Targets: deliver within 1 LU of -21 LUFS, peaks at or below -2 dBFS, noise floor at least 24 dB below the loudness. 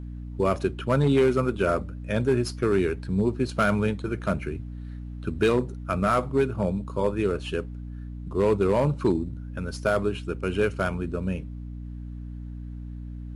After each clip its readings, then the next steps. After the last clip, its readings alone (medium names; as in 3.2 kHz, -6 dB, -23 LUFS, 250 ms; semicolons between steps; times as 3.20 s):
clipped samples 0.6%; clipping level -14.0 dBFS; hum 60 Hz; highest harmonic 300 Hz; hum level -34 dBFS; loudness -26.0 LUFS; peak level -14.0 dBFS; loudness target -21.0 LUFS
-> clip repair -14 dBFS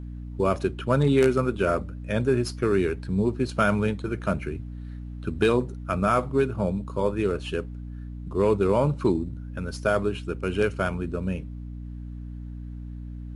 clipped samples 0.0%; hum 60 Hz; highest harmonic 300 Hz; hum level -34 dBFS
-> de-hum 60 Hz, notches 5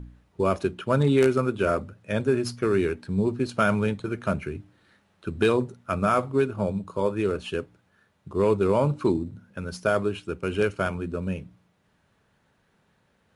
hum not found; loudness -25.5 LUFS; peak level -7.0 dBFS; loudness target -21.0 LUFS
-> trim +4.5 dB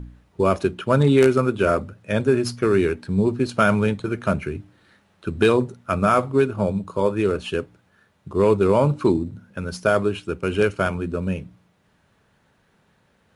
loudness -21.0 LUFS; peak level -2.5 dBFS; noise floor -63 dBFS